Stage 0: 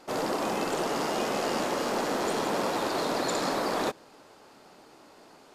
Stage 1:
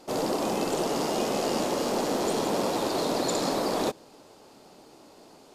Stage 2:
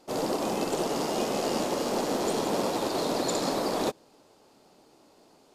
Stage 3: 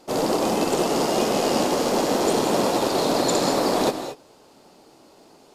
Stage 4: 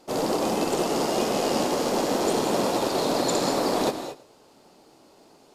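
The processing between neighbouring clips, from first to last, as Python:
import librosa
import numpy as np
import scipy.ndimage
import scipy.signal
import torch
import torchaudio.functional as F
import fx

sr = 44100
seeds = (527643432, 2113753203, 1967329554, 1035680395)

y1 = fx.peak_eq(x, sr, hz=1600.0, db=-8.5, octaves=1.5)
y1 = F.gain(torch.from_numpy(y1), 3.5).numpy()
y2 = fx.upward_expand(y1, sr, threshold_db=-38.0, expansion=1.5)
y3 = fx.rev_gated(y2, sr, seeds[0], gate_ms=250, shape='rising', drr_db=8.5)
y3 = F.gain(torch.from_numpy(y3), 6.5).numpy()
y4 = y3 + 10.0 ** (-18.5 / 20.0) * np.pad(y3, (int(112 * sr / 1000.0), 0))[:len(y3)]
y4 = F.gain(torch.from_numpy(y4), -3.0).numpy()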